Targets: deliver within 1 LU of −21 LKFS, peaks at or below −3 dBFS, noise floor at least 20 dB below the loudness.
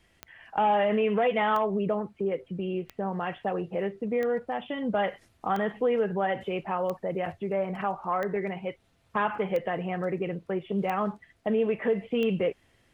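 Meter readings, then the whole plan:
number of clicks 10; integrated loudness −29.0 LKFS; sample peak −14.0 dBFS; target loudness −21.0 LKFS
→ click removal
level +8 dB

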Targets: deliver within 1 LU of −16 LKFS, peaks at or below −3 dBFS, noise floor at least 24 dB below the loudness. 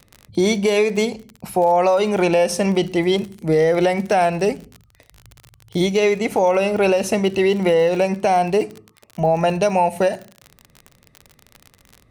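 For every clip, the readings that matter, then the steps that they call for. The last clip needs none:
crackle rate 39 per second; integrated loudness −18.5 LKFS; sample peak −6.5 dBFS; target loudness −16.0 LKFS
→ click removal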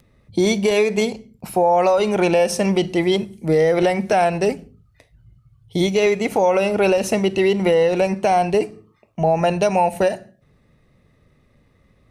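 crackle rate 0.17 per second; integrated loudness −18.5 LKFS; sample peak −6.5 dBFS; target loudness −16.0 LKFS
→ level +2.5 dB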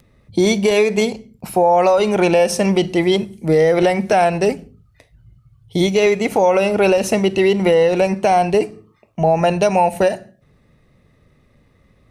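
integrated loudness −16.0 LKFS; sample peak −4.0 dBFS; background noise floor −57 dBFS

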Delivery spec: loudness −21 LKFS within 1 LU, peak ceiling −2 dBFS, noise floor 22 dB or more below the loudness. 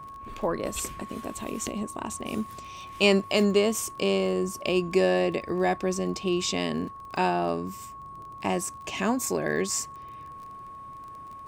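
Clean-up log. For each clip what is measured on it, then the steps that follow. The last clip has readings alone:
crackle rate 29 per second; interfering tone 1,100 Hz; level of the tone −40 dBFS; integrated loudness −27.5 LKFS; sample peak −8.0 dBFS; target loudness −21.0 LKFS
→ click removal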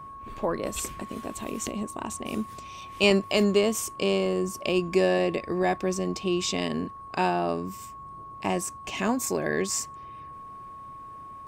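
crackle rate 0.087 per second; interfering tone 1,100 Hz; level of the tone −40 dBFS
→ notch filter 1,100 Hz, Q 30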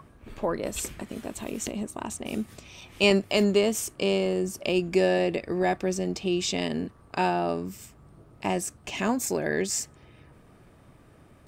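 interfering tone none found; integrated loudness −27.5 LKFS; sample peak −7.5 dBFS; target loudness −21.0 LKFS
→ level +6.5 dB
brickwall limiter −2 dBFS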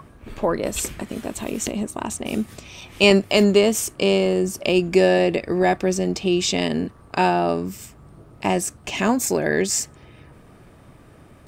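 integrated loudness −21.0 LKFS; sample peak −2.0 dBFS; background noise floor −49 dBFS

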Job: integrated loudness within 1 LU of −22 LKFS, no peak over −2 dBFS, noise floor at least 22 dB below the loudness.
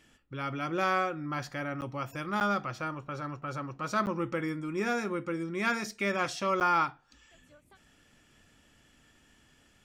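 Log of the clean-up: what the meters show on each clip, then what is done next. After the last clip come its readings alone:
number of dropouts 4; longest dropout 9.2 ms; integrated loudness −32.0 LKFS; sample peak −15.0 dBFS; target loudness −22.0 LKFS
→ repair the gap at 0:01.81/0:02.40/0:04.06/0:06.60, 9.2 ms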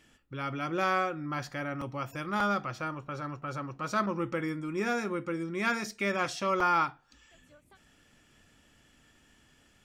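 number of dropouts 0; integrated loudness −32.0 LKFS; sample peak −15.0 dBFS; target loudness −22.0 LKFS
→ level +10 dB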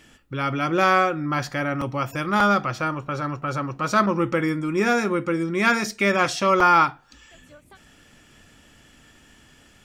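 integrated loudness −22.0 LKFS; sample peak −5.0 dBFS; background noise floor −54 dBFS

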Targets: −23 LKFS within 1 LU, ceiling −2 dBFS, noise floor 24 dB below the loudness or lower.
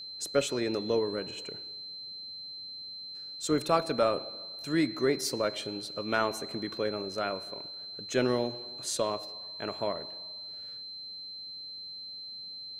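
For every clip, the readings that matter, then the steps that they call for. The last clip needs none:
interfering tone 4,100 Hz; level of the tone −40 dBFS; integrated loudness −33.0 LKFS; sample peak −12.0 dBFS; target loudness −23.0 LKFS
→ notch filter 4,100 Hz, Q 30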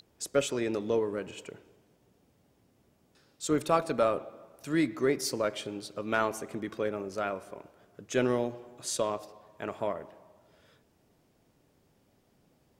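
interfering tone none found; integrated loudness −31.5 LKFS; sample peak −12.5 dBFS; target loudness −23.0 LKFS
→ level +8.5 dB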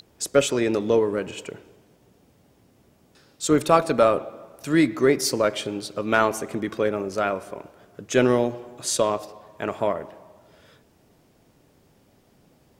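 integrated loudness −23.0 LKFS; sample peak −4.0 dBFS; background noise floor −60 dBFS

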